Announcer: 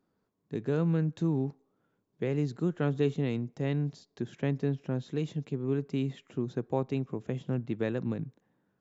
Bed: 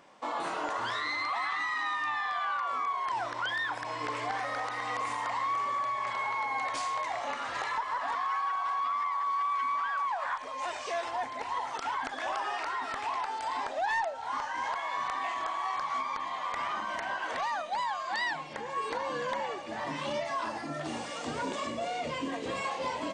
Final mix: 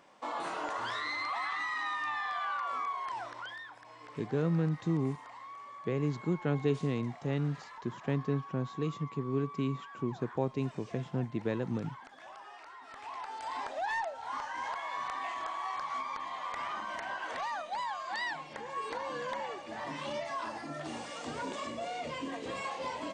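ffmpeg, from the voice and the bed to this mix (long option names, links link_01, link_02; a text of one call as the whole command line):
ffmpeg -i stem1.wav -i stem2.wav -filter_complex "[0:a]adelay=3650,volume=-2dB[link_01];[1:a]volume=9.5dB,afade=type=out:start_time=2.79:duration=0.92:silence=0.211349,afade=type=in:start_time=12.82:duration=0.78:silence=0.237137[link_02];[link_01][link_02]amix=inputs=2:normalize=0" out.wav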